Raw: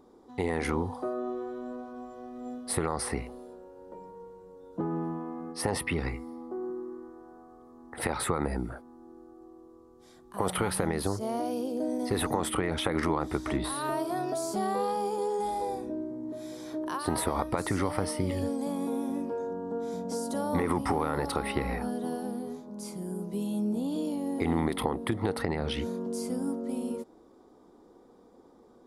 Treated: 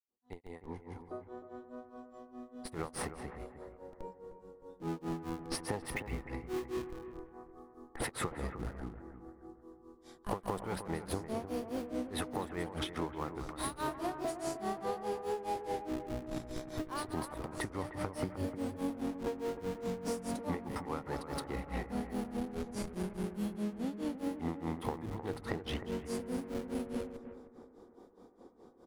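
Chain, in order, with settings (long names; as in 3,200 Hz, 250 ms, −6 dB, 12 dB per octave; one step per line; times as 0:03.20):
fade in at the beginning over 3.67 s
in parallel at −5.5 dB: comparator with hysteresis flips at −34.5 dBFS
on the sum: slap from a distant wall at 35 metres, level −11 dB
downward compressor, threshold −33 dBFS, peak gain reduction 11.5 dB
granular cloud 209 ms, grains 4.8 per second, pitch spread up and down by 0 semitones
on a send: bucket-brigade delay 308 ms, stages 4,096, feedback 39%, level −11 dB
on the sum: level +1.5 dB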